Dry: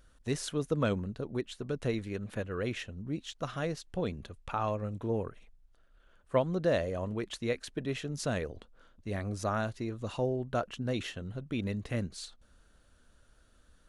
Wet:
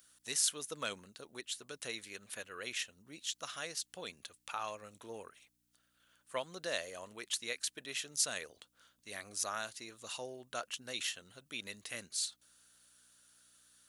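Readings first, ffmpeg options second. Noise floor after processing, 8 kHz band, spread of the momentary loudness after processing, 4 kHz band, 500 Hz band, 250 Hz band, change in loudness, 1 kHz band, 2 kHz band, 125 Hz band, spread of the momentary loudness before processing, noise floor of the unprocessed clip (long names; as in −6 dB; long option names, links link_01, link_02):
−78 dBFS, +10.0 dB, 14 LU, +4.5 dB, −12.5 dB, −18.5 dB, −5.0 dB, −7.0 dB, −1.0 dB, −24.5 dB, 9 LU, −64 dBFS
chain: -af "aeval=exprs='val(0)+0.00158*(sin(2*PI*60*n/s)+sin(2*PI*2*60*n/s)/2+sin(2*PI*3*60*n/s)/3+sin(2*PI*4*60*n/s)/4+sin(2*PI*5*60*n/s)/5)':channel_layout=same,aderivative,volume=10dB"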